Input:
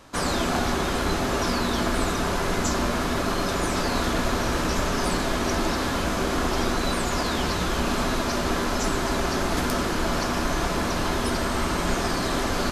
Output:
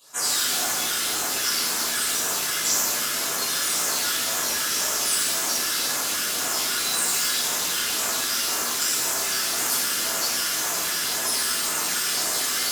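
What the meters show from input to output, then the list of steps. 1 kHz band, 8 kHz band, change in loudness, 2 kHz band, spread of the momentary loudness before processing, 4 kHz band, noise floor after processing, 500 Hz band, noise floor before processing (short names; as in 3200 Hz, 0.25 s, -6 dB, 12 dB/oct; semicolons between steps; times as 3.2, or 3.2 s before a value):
-5.0 dB, +12.0 dB, +3.0 dB, +0.5 dB, 1 LU, +6.5 dB, -26 dBFS, -9.5 dB, -26 dBFS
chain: phaser stages 12, 1.9 Hz, lowest notch 690–4500 Hz; differentiator; shimmer reverb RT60 1.2 s, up +12 st, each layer -8 dB, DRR -11 dB; gain +3.5 dB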